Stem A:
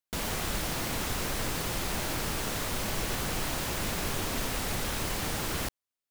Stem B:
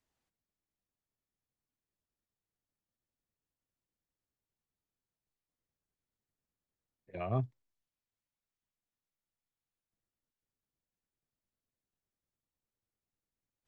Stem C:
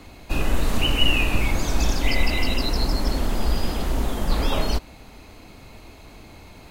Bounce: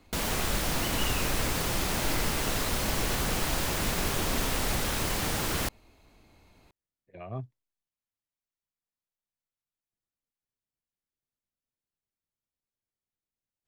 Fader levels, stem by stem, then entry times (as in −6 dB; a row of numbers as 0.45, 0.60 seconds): +2.5, −4.5, −15.5 decibels; 0.00, 0.00, 0.00 seconds